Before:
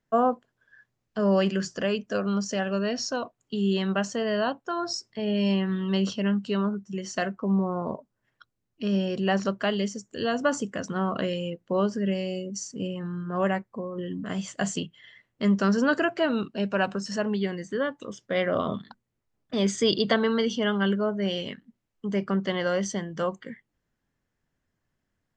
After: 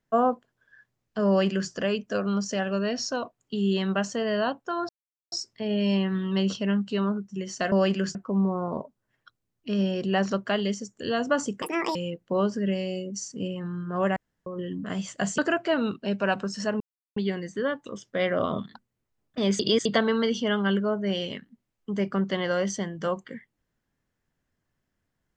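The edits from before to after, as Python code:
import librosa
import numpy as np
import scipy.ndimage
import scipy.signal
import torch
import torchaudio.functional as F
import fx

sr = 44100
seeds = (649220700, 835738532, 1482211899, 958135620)

y = fx.edit(x, sr, fx.duplicate(start_s=1.28, length_s=0.43, to_s=7.29),
    fx.insert_silence(at_s=4.89, length_s=0.43),
    fx.speed_span(start_s=10.76, length_s=0.59, speed=1.77),
    fx.room_tone_fill(start_s=13.56, length_s=0.3),
    fx.cut(start_s=14.78, length_s=1.12),
    fx.insert_silence(at_s=17.32, length_s=0.36),
    fx.reverse_span(start_s=19.75, length_s=0.26), tone=tone)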